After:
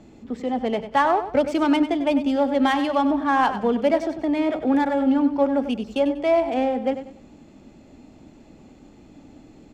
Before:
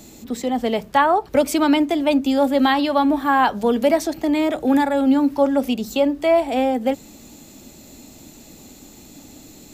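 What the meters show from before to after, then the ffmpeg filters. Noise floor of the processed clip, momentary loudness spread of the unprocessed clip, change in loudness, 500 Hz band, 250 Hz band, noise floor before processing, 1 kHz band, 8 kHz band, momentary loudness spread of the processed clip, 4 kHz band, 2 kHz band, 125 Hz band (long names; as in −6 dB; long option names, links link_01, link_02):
−50 dBFS, 6 LU, −3.0 dB, −2.5 dB, −3.0 dB, −45 dBFS, −3.0 dB, below −10 dB, 6 LU, −6.0 dB, −3.5 dB, can't be measured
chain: -af "bandreject=frequency=3900:width=9.9,adynamicsmooth=sensitivity=1.5:basefreq=2500,aecho=1:1:96|192|288:0.282|0.0874|0.0271,volume=-3dB"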